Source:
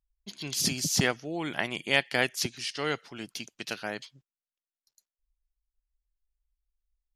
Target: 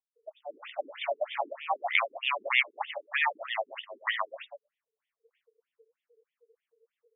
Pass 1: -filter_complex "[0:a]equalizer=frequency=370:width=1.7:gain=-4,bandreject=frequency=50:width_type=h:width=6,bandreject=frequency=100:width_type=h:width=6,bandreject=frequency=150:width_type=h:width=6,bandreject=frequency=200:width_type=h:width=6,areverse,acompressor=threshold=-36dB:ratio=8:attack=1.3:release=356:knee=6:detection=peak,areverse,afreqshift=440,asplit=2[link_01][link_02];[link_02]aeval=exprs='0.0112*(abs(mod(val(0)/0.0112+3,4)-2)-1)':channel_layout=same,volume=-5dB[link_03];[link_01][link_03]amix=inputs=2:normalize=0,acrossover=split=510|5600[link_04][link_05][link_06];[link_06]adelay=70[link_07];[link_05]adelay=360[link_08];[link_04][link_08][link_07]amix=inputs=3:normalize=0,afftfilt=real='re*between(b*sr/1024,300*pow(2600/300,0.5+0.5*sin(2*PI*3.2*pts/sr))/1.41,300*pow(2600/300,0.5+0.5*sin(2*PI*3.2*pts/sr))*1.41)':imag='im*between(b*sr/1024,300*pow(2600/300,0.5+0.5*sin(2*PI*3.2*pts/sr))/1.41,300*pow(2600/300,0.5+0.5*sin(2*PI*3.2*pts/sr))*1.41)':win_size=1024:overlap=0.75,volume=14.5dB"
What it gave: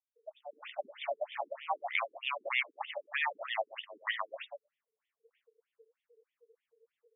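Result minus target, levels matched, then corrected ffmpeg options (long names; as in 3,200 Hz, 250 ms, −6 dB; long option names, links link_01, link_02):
downward compressor: peak gain reduction +8.5 dB
-filter_complex "[0:a]equalizer=frequency=370:width=1.7:gain=-4,bandreject=frequency=50:width_type=h:width=6,bandreject=frequency=100:width_type=h:width=6,bandreject=frequency=150:width_type=h:width=6,bandreject=frequency=200:width_type=h:width=6,areverse,acompressor=threshold=-26.5dB:ratio=8:attack=1.3:release=356:knee=6:detection=peak,areverse,afreqshift=440,asplit=2[link_01][link_02];[link_02]aeval=exprs='0.0112*(abs(mod(val(0)/0.0112+3,4)-2)-1)':channel_layout=same,volume=-5dB[link_03];[link_01][link_03]amix=inputs=2:normalize=0,acrossover=split=510|5600[link_04][link_05][link_06];[link_06]adelay=70[link_07];[link_05]adelay=360[link_08];[link_04][link_08][link_07]amix=inputs=3:normalize=0,afftfilt=real='re*between(b*sr/1024,300*pow(2600/300,0.5+0.5*sin(2*PI*3.2*pts/sr))/1.41,300*pow(2600/300,0.5+0.5*sin(2*PI*3.2*pts/sr))*1.41)':imag='im*between(b*sr/1024,300*pow(2600/300,0.5+0.5*sin(2*PI*3.2*pts/sr))/1.41,300*pow(2600/300,0.5+0.5*sin(2*PI*3.2*pts/sr))*1.41)':win_size=1024:overlap=0.75,volume=14.5dB"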